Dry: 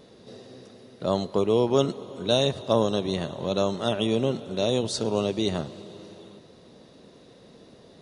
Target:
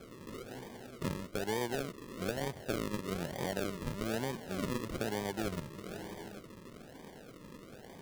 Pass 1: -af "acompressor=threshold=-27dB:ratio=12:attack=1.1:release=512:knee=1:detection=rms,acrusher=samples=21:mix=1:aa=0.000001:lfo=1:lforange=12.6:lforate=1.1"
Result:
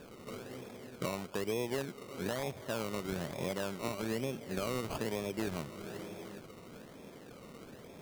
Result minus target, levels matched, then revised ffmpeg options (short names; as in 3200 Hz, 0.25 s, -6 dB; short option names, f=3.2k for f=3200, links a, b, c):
decimation with a swept rate: distortion -10 dB
-af "acompressor=threshold=-27dB:ratio=12:attack=1.1:release=512:knee=1:detection=rms,acrusher=samples=46:mix=1:aa=0.000001:lfo=1:lforange=27.6:lforate=1.1"